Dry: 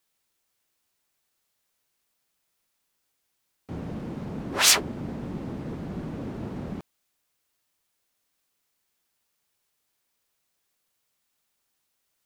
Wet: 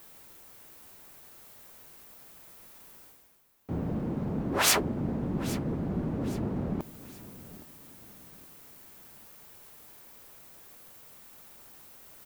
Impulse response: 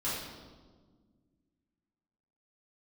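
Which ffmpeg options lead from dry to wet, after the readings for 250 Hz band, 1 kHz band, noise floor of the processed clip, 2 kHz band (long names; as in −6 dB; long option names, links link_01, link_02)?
+3.0 dB, 0.0 dB, −54 dBFS, −3.5 dB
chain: -af "equalizer=frequency=4800:width=0.34:gain=-10.5,areverse,acompressor=mode=upward:threshold=-34dB:ratio=2.5,areverse,aecho=1:1:816|1632|2448:0.133|0.0493|0.0183,volume=3dB"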